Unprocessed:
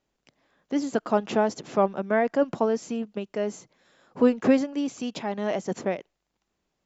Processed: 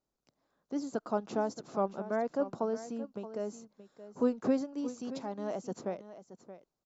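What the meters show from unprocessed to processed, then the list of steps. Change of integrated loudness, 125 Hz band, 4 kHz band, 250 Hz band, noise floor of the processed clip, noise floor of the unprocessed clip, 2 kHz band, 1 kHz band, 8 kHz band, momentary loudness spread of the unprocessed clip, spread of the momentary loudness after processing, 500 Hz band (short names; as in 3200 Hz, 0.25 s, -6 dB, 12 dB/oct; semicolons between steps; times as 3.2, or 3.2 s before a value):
-9.0 dB, -9.0 dB, -12.5 dB, -9.0 dB, under -85 dBFS, -80 dBFS, -14.0 dB, -9.0 dB, n/a, 10 LU, 20 LU, -9.0 dB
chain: band shelf 2400 Hz -9 dB 1.2 oct; on a send: echo 0.625 s -13.5 dB; on the sum: gain -9 dB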